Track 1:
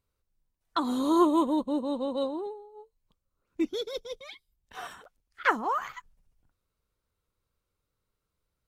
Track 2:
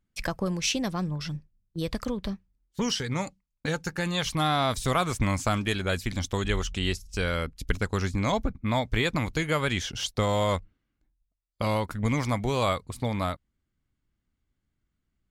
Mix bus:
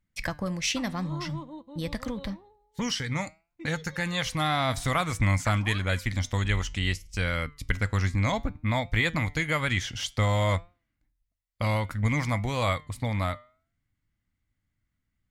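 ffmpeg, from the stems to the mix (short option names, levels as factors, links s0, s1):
-filter_complex "[0:a]lowpass=5000,volume=0.299[s0];[1:a]volume=1.41[s1];[s0][s1]amix=inputs=2:normalize=0,equalizer=f=100:t=o:w=0.33:g=8,equalizer=f=400:t=o:w=0.33:g=-9,equalizer=f=2000:t=o:w=0.33:g=8,flanger=delay=5.6:depth=2.7:regen=89:speed=0.56:shape=triangular"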